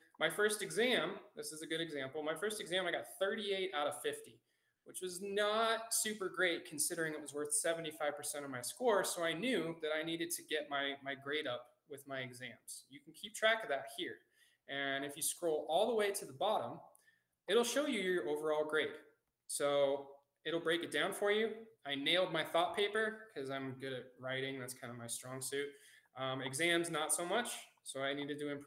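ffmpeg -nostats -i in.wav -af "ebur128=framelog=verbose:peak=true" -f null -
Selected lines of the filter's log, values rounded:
Integrated loudness:
  I:         -37.7 LUFS
  Threshold: -48.1 LUFS
Loudness range:
  LRA:         4.3 LU
  Threshold: -58.2 LUFS
  LRA low:   -40.8 LUFS
  LRA high:  -36.5 LUFS
True peak:
  Peak:      -17.8 dBFS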